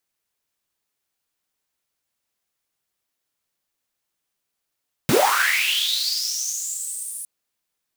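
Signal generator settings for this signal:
filter sweep on noise pink, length 2.16 s highpass, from 100 Hz, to 9,700 Hz, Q 8.8, linear, gain ramp −14 dB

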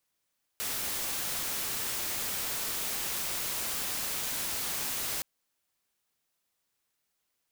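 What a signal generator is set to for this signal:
noise white, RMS −33.5 dBFS 4.62 s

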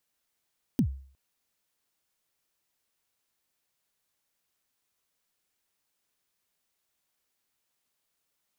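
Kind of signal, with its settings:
synth kick length 0.36 s, from 290 Hz, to 67 Hz, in 84 ms, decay 0.48 s, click on, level −17.5 dB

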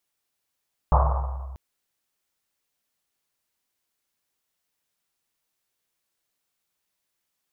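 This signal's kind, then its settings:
drum after Risset length 0.64 s, pitch 66 Hz, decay 2.03 s, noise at 870 Hz, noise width 620 Hz, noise 35%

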